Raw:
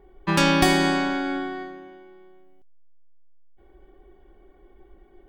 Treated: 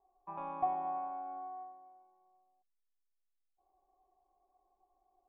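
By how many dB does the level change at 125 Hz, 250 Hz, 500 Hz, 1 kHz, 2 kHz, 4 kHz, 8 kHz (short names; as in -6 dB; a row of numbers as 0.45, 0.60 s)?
under -30 dB, -32.0 dB, -21.5 dB, -9.5 dB, under -35 dB, under -40 dB, under -40 dB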